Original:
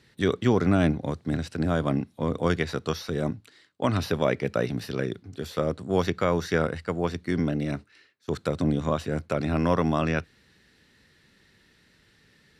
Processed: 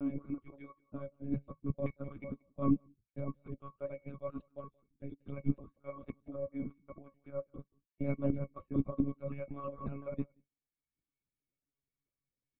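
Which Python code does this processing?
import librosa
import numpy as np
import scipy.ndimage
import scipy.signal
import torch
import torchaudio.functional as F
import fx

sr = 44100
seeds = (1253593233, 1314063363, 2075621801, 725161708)

y = fx.block_reorder(x, sr, ms=186.0, group=5)
y = fx.highpass(y, sr, hz=87.0, slope=6)
y = fx.dereverb_blind(y, sr, rt60_s=1.2)
y = fx.low_shelf(y, sr, hz=210.0, db=-2.5)
y = fx.level_steps(y, sr, step_db=18)
y = fx.octave_resonator(y, sr, note='C#', decay_s=0.12)
y = y + 10.0 ** (-14.0 / 20.0) * np.pad(y, (int(178 * sr / 1000.0), 0))[:len(y)]
y = fx.lpc_monotone(y, sr, seeds[0], pitch_hz=140.0, order=16)
y = fx.upward_expand(y, sr, threshold_db=-55.0, expansion=2.5)
y = y * 10.0 ** (15.0 / 20.0)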